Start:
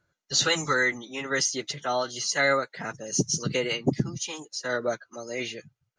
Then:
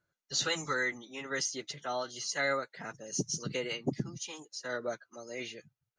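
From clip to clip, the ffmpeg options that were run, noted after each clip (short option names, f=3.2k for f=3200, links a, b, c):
-af "equalizer=f=67:t=o:w=1.3:g=-4.5,volume=-8dB"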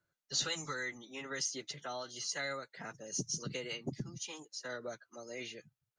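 -filter_complex "[0:a]acrossover=split=140|3000[a][b][c];[b]acompressor=threshold=-39dB:ratio=2.5[d];[a][d][c]amix=inputs=3:normalize=0,volume=-2dB"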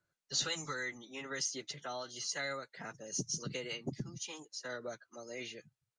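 -af "aresample=22050,aresample=44100"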